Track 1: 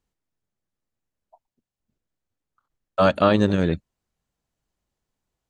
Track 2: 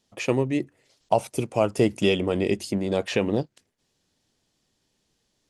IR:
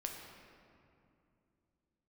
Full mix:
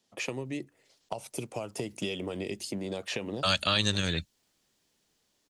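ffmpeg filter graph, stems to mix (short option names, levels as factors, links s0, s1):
-filter_complex "[0:a]tiltshelf=f=970:g=-8.5,dynaudnorm=f=210:g=13:m=4.22,adelay=450,volume=0.944[s0];[1:a]highpass=f=200:p=1,acompressor=threshold=0.0794:ratio=6,volume=0.794[s1];[s0][s1]amix=inputs=2:normalize=0,acrossover=split=140|3000[s2][s3][s4];[s3]acompressor=threshold=0.0178:ratio=3[s5];[s2][s5][s4]amix=inputs=3:normalize=0"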